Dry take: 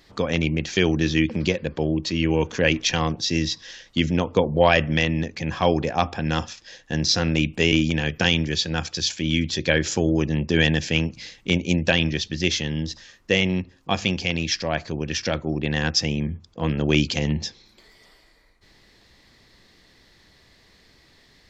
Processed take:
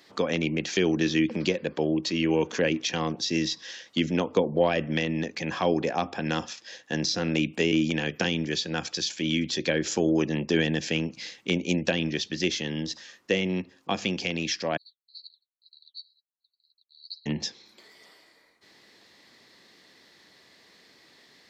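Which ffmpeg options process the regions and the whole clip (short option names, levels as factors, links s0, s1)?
-filter_complex "[0:a]asettb=1/sr,asplit=3[s0][s1][s2];[s0]atrim=end=14.774[s3];[s1]atrim=start=14.77:end=17.26,asetpts=PTS-STARTPTS,afade=t=in:d=0.004:c=qsin,afade=t=out:st=2.486:d=0.004:c=qsin,asuperpass=centerf=4200:order=20:qfactor=6.2,flanger=delay=2.8:depth=7:regen=-45:speed=2:shape=sinusoidal[s4];[s2]atrim=start=17.256[s5];[s3][s4]acrossfade=d=0.004:c1=hsin:c2=qsin[s6];[s6][s5]acrossfade=d=0.004:c1=qsin:c2=hsin,acrossover=split=450[s7][s8];[s8]acompressor=threshold=0.0447:ratio=4[s9];[s7][s9]amix=inputs=2:normalize=0,highpass=230"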